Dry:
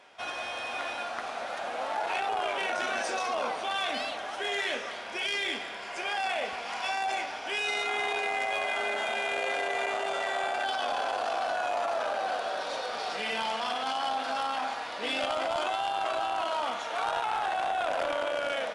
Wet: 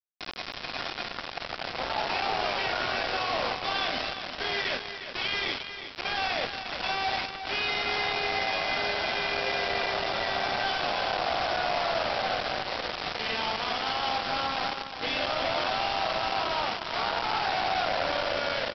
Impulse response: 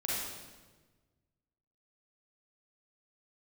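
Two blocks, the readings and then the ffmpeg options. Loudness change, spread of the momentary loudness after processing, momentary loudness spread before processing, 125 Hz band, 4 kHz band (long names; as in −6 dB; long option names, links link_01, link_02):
+2.0 dB, 6 LU, 5 LU, can't be measured, +5.0 dB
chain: -af "aresample=11025,acrusher=bits=4:mix=0:aa=0.000001,aresample=44100,aecho=1:1:357:0.335"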